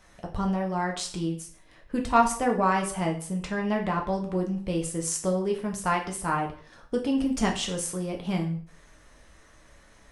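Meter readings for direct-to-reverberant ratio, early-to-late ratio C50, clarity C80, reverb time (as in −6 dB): 1.0 dB, 9.5 dB, 13.5 dB, 0.50 s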